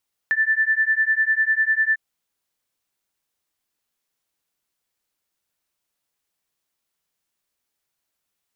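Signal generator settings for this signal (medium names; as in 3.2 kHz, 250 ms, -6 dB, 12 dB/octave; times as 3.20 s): beating tones 1.76 kHz, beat 10 Hz, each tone -20 dBFS 1.65 s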